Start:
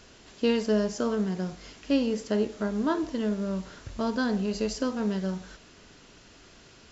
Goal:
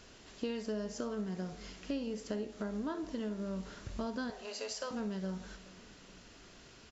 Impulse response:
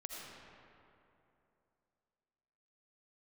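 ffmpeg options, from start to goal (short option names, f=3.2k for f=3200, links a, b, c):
-filter_complex "[0:a]asettb=1/sr,asplit=3[a][b][c];[a]atrim=end=4.304[d];[b]atrim=start=4.3:end=4.91,asetpts=PTS-STARTPTS,afade=t=in:d=0.004:c=qsin,afade=t=out:st=0.606:d=0.004:c=qsin,highpass=f=530:w=0.5412,highpass=f=530:w=1.3066[e];[c]atrim=start=4.906[f];[d][e]acrossfade=d=0.004:c1=hsin:c2=qsin[g];[g][f]acrossfade=d=0.004:c1=qsin:c2=hsin,acompressor=threshold=-32dB:ratio=4,asplit=2[h][i];[i]adelay=420,lowpass=f=2k:p=1,volume=-20.5dB,asplit=2[j][k];[k]adelay=420,lowpass=f=2k:p=1,volume=0.5,asplit=2[l][m];[m]adelay=420,lowpass=f=2k:p=1,volume=0.5,asplit=2[n][o];[o]adelay=420,lowpass=f=2k:p=1,volume=0.5[p];[h][j][l][n][p]amix=inputs=5:normalize=0[q];[1:a]atrim=start_sample=2205,atrim=end_sample=3087[r];[q][r]afir=irnorm=-1:irlink=0,volume=2dB"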